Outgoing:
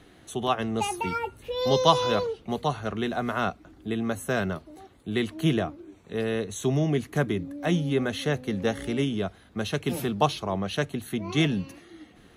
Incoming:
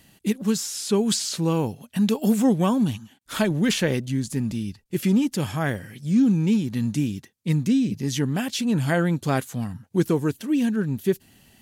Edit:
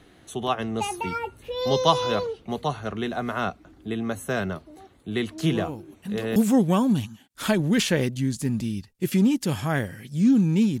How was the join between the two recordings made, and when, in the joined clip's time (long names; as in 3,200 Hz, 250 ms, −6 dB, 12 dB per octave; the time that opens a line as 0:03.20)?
outgoing
0:05.38: mix in incoming from 0:01.29 0.98 s −11 dB
0:06.36: continue with incoming from 0:02.27